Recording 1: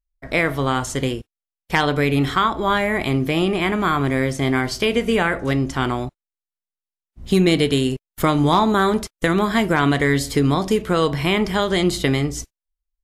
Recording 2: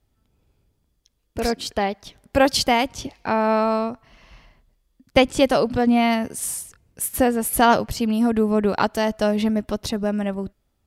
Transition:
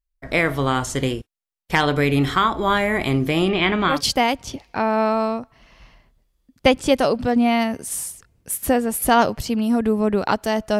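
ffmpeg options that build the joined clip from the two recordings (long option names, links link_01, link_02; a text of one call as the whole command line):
ffmpeg -i cue0.wav -i cue1.wav -filter_complex "[0:a]asettb=1/sr,asplit=3[link_01][link_02][link_03];[link_01]atrim=end=3.494[link_04];[link_02]atrim=start=3.49:end=4.02,asetpts=PTS-STARTPTS,afade=type=in:duration=0.004:curve=qsin,afade=type=out:start_time=0.526:duration=0.004:curve=qsin,lowpass=frequency=3500:width_type=q:width=1.9[link_05];[link_03]atrim=start=4.016[link_06];[link_04][link_05]acrossfade=duration=0.004:curve1=hsin:curve2=qsin[link_07];[link_07][link_06]acrossfade=duration=0.004:curve1=qsin:curve2=hsin,apad=whole_dur=10.79,atrim=end=10.79,atrim=end=4.02,asetpts=PTS-STARTPTS[link_08];[1:a]atrim=start=2.37:end=9.3,asetpts=PTS-STARTPTS[link_09];[link_08][link_09]acrossfade=duration=0.16:curve1=tri:curve2=tri" out.wav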